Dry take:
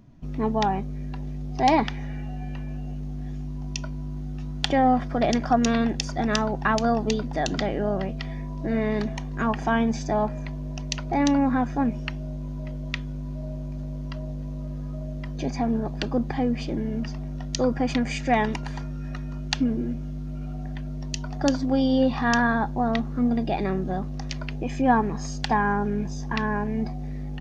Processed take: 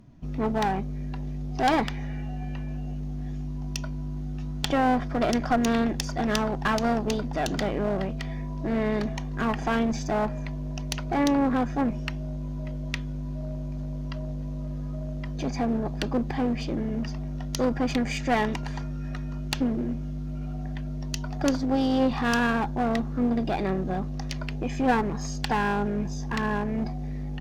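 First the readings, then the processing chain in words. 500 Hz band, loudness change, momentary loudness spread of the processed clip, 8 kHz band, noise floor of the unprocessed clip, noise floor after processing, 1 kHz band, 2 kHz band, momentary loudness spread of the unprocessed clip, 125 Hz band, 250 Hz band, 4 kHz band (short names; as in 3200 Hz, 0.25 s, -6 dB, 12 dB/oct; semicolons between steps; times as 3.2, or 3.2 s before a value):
-1.5 dB, -1.5 dB, 10 LU, n/a, -32 dBFS, -32 dBFS, -2.5 dB, -1.5 dB, 13 LU, -1.0 dB, -1.5 dB, -2.0 dB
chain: one-sided clip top -25.5 dBFS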